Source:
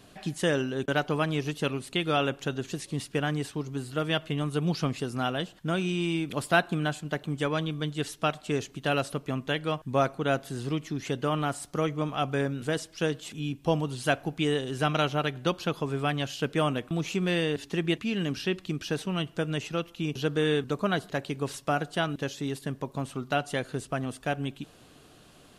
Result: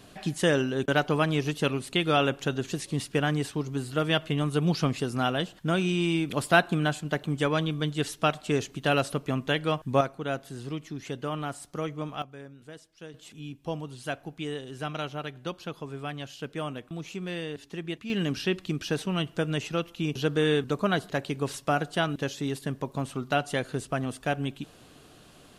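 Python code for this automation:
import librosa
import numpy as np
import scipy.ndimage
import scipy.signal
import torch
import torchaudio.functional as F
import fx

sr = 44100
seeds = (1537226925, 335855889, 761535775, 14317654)

y = fx.gain(x, sr, db=fx.steps((0.0, 2.5), (10.01, -4.5), (12.22, -16.5), (13.14, -7.5), (18.1, 1.5)))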